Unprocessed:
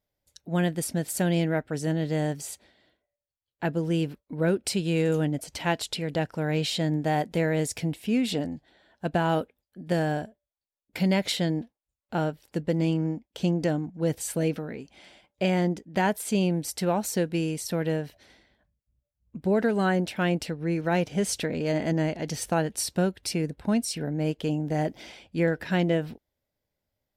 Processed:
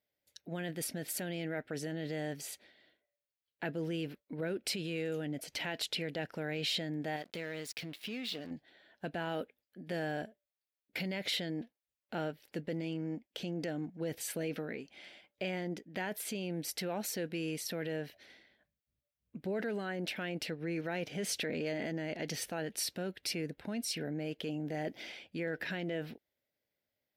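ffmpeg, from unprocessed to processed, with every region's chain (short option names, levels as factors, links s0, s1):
-filter_complex "[0:a]asettb=1/sr,asplit=3[s0][s1][s2];[s0]atrim=end=7.164[s3];[s1]atrim=start=7.16:end=8.51,asetpts=PTS-STARTPTS,afade=t=in:d=0.004:c=qsin,afade=t=out:st=1.346:d=0.004:c=qsin,equalizer=f=4200:w=1.1:g=9,acompressor=threshold=0.0224:ratio=4:attack=3.2:release=140:knee=1:detection=peak,aeval=exprs='sgn(val(0))*max(abs(val(0))-0.00422,0)':c=same[s4];[s2]atrim=start=8.506[s5];[s3][s4]acrossfade=d=0.004:c1=hsin:c2=qsin[s6];[s6][s5]acrossfade=d=0.004:c1=qsin:c2=hsin,equalizer=f=1000:t=o:w=1:g=-8,equalizer=f=2000:t=o:w=1:g=3,equalizer=f=8000:t=o:w=1:g=-9,alimiter=level_in=1.12:limit=0.0631:level=0:latency=1:release=10,volume=0.891,highpass=f=410:p=1"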